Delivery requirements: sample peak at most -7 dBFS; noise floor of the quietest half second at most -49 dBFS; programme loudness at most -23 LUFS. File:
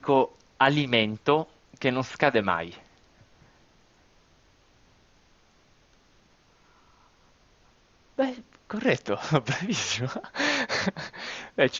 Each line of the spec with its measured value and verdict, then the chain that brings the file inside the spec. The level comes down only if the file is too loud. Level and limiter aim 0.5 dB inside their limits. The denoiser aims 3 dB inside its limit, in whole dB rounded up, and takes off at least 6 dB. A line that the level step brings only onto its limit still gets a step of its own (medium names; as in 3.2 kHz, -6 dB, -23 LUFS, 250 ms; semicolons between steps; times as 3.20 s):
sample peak -5.0 dBFS: fail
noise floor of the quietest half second -61 dBFS: pass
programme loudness -26.5 LUFS: pass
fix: peak limiter -7.5 dBFS